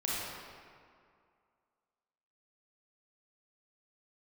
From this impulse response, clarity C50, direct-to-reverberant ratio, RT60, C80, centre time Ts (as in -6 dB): -4.0 dB, -7.0 dB, 2.2 s, -1.0 dB, 0.145 s